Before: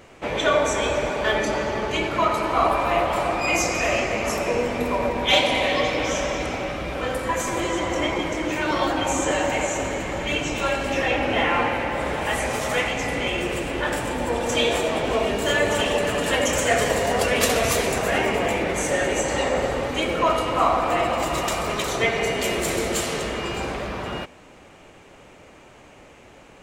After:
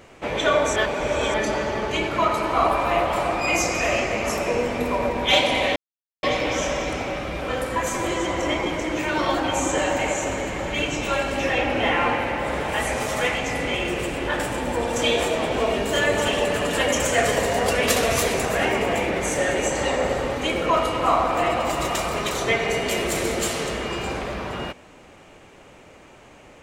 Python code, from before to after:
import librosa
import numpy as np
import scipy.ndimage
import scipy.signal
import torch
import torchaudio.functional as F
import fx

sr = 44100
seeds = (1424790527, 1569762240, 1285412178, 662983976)

y = fx.edit(x, sr, fx.reverse_span(start_s=0.76, length_s=0.58),
    fx.insert_silence(at_s=5.76, length_s=0.47), tone=tone)